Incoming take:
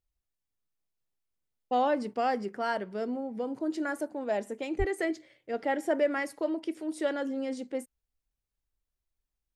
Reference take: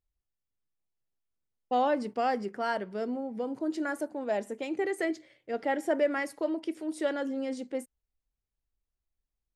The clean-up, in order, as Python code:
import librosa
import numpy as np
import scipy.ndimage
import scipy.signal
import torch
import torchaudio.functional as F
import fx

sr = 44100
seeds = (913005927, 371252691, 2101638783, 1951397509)

y = fx.fix_deplosive(x, sr, at_s=(4.78,))